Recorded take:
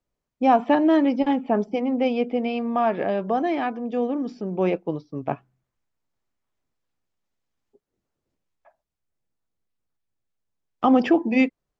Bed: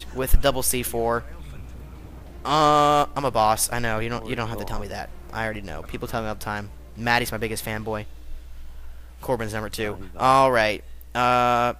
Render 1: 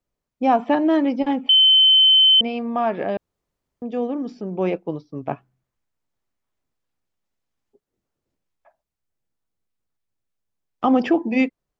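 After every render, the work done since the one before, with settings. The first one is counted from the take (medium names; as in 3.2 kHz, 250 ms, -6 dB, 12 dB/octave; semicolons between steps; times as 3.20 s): 1.49–2.41 s: bleep 3.07 kHz -10 dBFS; 3.17–3.82 s: room tone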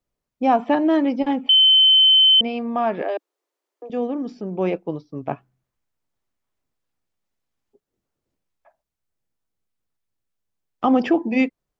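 3.02–3.90 s: steep high-pass 300 Hz 72 dB/octave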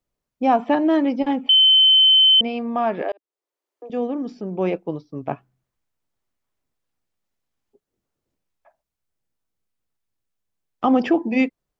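3.12–3.95 s: fade in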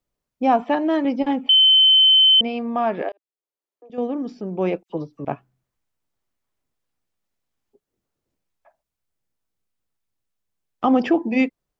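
0.62–1.05 s: bass shelf 240 Hz -8.5 dB; 3.09–3.98 s: gain -9 dB; 4.83–5.25 s: phase dispersion lows, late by 68 ms, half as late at 2 kHz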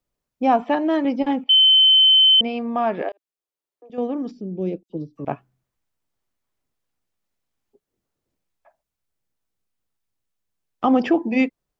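1.44–2.38 s: upward expansion 2.5:1, over -23 dBFS; 4.31–5.16 s: FFT filter 300 Hz 0 dB, 560 Hz -9 dB, 1 kHz -24 dB, 2.6 kHz -15 dB, 3.7 kHz -7 dB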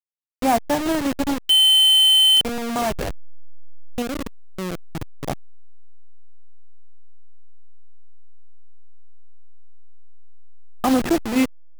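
send-on-delta sampling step -19.5 dBFS; hard clipper -11 dBFS, distortion -25 dB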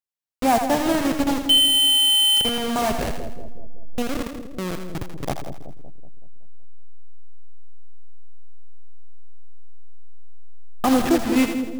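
two-band feedback delay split 630 Hz, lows 188 ms, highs 82 ms, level -7 dB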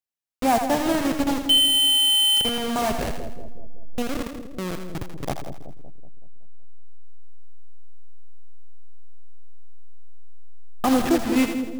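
trim -1.5 dB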